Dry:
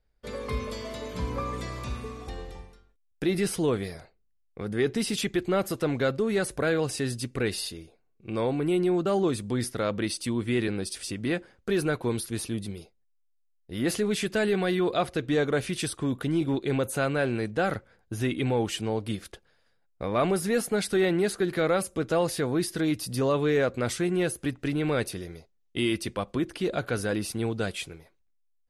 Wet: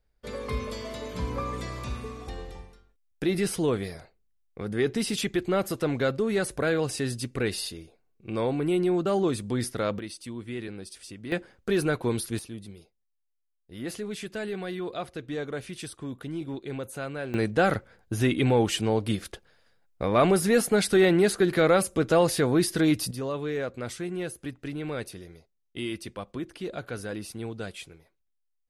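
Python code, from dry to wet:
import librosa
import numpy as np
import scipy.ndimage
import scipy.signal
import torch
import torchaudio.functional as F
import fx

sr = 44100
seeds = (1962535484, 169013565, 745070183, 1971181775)

y = fx.gain(x, sr, db=fx.steps((0.0, 0.0), (9.99, -9.0), (11.32, 1.0), (12.39, -8.0), (17.34, 4.0), (23.11, -6.5)))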